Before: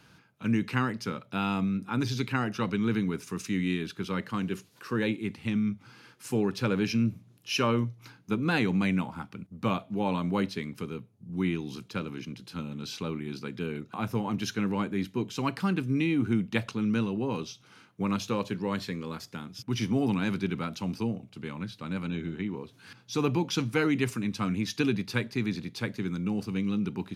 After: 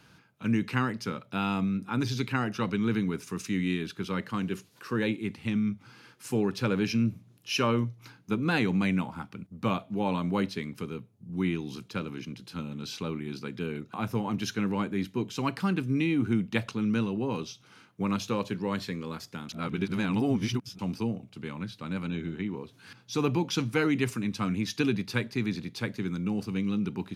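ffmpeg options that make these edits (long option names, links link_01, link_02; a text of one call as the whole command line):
ffmpeg -i in.wav -filter_complex "[0:a]asplit=3[link_01][link_02][link_03];[link_01]atrim=end=19.492[link_04];[link_02]atrim=start=19.488:end=20.792,asetpts=PTS-STARTPTS,areverse[link_05];[link_03]atrim=start=20.788[link_06];[link_04][link_05]acrossfade=duration=0.004:curve1=hsin:curve2=hsin[link_07];[link_07][link_06]acrossfade=duration=0.004:curve1=hsin:curve2=hsin" out.wav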